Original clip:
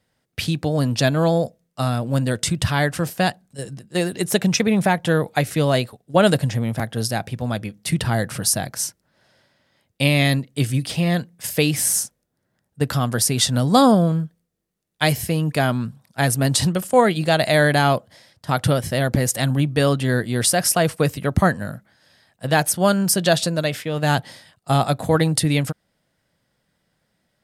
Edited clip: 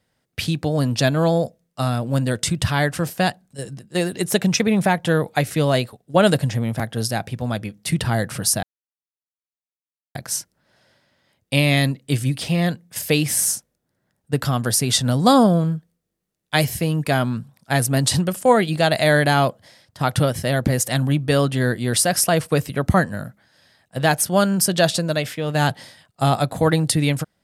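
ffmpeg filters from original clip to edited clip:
ffmpeg -i in.wav -filter_complex "[0:a]asplit=2[link_01][link_02];[link_01]atrim=end=8.63,asetpts=PTS-STARTPTS,afade=type=out:start_time=8.626:duration=0.004:curve=hsin,apad=pad_dur=1.52[link_03];[link_02]atrim=start=8.63,asetpts=PTS-STARTPTS,afade=type=in:duration=0.004:curve=hsin[link_04];[link_03][link_04]concat=n=2:v=0:a=1" out.wav

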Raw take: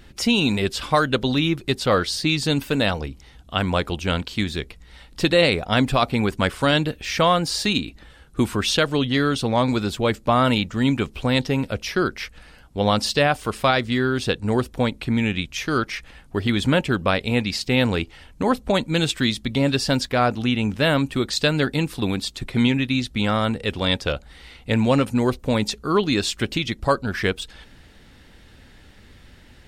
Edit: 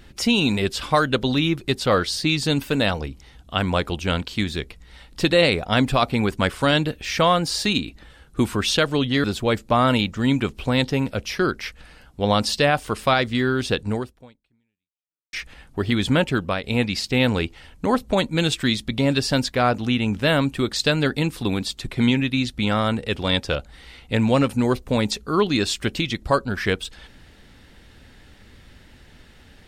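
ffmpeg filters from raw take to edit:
ffmpeg -i in.wav -filter_complex "[0:a]asplit=4[link_01][link_02][link_03][link_04];[link_01]atrim=end=9.242[link_05];[link_02]atrim=start=9.808:end=15.9,asetpts=PTS-STARTPTS,afade=type=out:start_time=4.662:duration=1.43:curve=exp[link_06];[link_03]atrim=start=15.9:end=17.21,asetpts=PTS-STARTPTS,afade=type=in:duration=0.004:curve=hsin,afade=type=out:start_time=0.99:duration=0.32:silence=0.398107[link_07];[link_04]atrim=start=17.21,asetpts=PTS-STARTPTS,afade=type=in:duration=0.004:curve=hsin:silence=0.398107[link_08];[link_06][link_07][link_08]concat=n=3:v=0:a=1[link_09];[link_05][link_09]acrossfade=duration=0.004:curve1=hsin:curve2=hsin" out.wav

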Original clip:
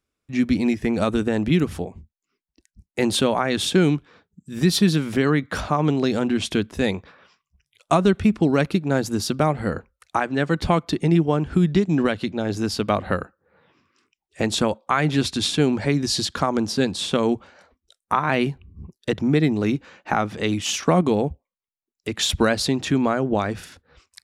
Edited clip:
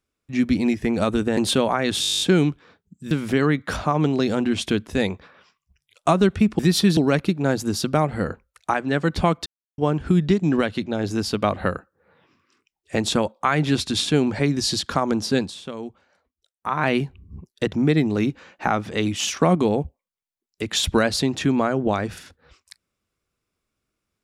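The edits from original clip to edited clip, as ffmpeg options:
ffmpeg -i in.wav -filter_complex "[0:a]asplit=19[link_01][link_02][link_03][link_04][link_05][link_06][link_07][link_08][link_09][link_10][link_11][link_12][link_13][link_14][link_15][link_16][link_17][link_18][link_19];[link_01]atrim=end=1.372[link_20];[link_02]atrim=start=3.028:end=3.692[link_21];[link_03]atrim=start=3.668:end=3.692[link_22];[link_04]atrim=start=3.668:end=3.692[link_23];[link_05]atrim=start=3.668:end=3.692[link_24];[link_06]atrim=start=3.668:end=3.692[link_25];[link_07]atrim=start=3.668:end=3.692[link_26];[link_08]atrim=start=3.668:end=3.692[link_27];[link_09]atrim=start=3.668:end=3.692[link_28];[link_10]atrim=start=3.668:end=3.692[link_29];[link_11]atrim=start=3.668:end=3.692[link_30];[link_12]atrim=start=3.668:end=4.572[link_31];[link_13]atrim=start=4.948:end=8.432[link_32];[link_14]atrim=start=4.568:end=4.952[link_33];[link_15]atrim=start=8.428:end=10.92,asetpts=PTS-STARTPTS,afade=type=out:start_time=2.488:duration=0.004:curve=hsin[link_34];[link_16]atrim=start=10.92:end=11.24,asetpts=PTS-STARTPTS,volume=0[link_35];[link_17]atrim=start=11.24:end=17.01,asetpts=PTS-STARTPTS,afade=type=in:duration=0.004:curve=hsin,afade=type=out:start_time=5.64:duration=0.13:silence=0.237137[link_36];[link_18]atrim=start=17.01:end=18.1,asetpts=PTS-STARTPTS,volume=-12.5dB[link_37];[link_19]atrim=start=18.1,asetpts=PTS-STARTPTS,afade=type=in:duration=0.13:silence=0.237137[link_38];[link_20][link_21]acrossfade=duration=0.004:curve1=hsin:curve2=hsin[link_39];[link_39][link_22]acrossfade=duration=0.004:curve1=hsin:curve2=hsin[link_40];[link_40][link_23]acrossfade=duration=0.004:curve1=hsin:curve2=hsin[link_41];[link_41][link_24]acrossfade=duration=0.004:curve1=hsin:curve2=hsin[link_42];[link_42][link_25]acrossfade=duration=0.004:curve1=hsin:curve2=hsin[link_43];[link_43][link_26]acrossfade=duration=0.004:curve1=hsin:curve2=hsin[link_44];[link_44][link_27]acrossfade=duration=0.004:curve1=hsin:curve2=hsin[link_45];[link_45][link_28]acrossfade=duration=0.004:curve1=hsin:curve2=hsin[link_46];[link_46][link_29]acrossfade=duration=0.004:curve1=hsin:curve2=hsin[link_47];[link_47][link_30]acrossfade=duration=0.004:curve1=hsin:curve2=hsin[link_48];[link_48][link_31]acrossfade=duration=0.004:curve1=hsin:curve2=hsin[link_49];[link_49][link_32]acrossfade=duration=0.004:curve1=hsin:curve2=hsin[link_50];[link_50][link_33]acrossfade=duration=0.004:curve1=hsin:curve2=hsin[link_51];[link_34][link_35][link_36][link_37][link_38]concat=n=5:v=0:a=1[link_52];[link_51][link_52]acrossfade=duration=0.004:curve1=hsin:curve2=hsin" out.wav

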